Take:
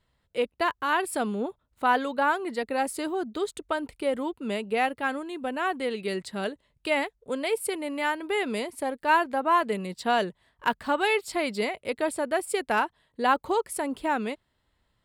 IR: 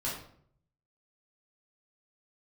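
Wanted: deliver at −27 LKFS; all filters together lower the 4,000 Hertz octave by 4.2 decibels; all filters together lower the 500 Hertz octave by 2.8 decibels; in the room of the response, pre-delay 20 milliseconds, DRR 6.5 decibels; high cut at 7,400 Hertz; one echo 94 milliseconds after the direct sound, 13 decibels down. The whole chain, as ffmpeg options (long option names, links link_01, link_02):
-filter_complex "[0:a]lowpass=7400,equalizer=frequency=500:width_type=o:gain=-3.5,equalizer=frequency=4000:width_type=o:gain=-6,aecho=1:1:94:0.224,asplit=2[link_01][link_02];[1:a]atrim=start_sample=2205,adelay=20[link_03];[link_02][link_03]afir=irnorm=-1:irlink=0,volume=-11dB[link_04];[link_01][link_04]amix=inputs=2:normalize=0,volume=1.5dB"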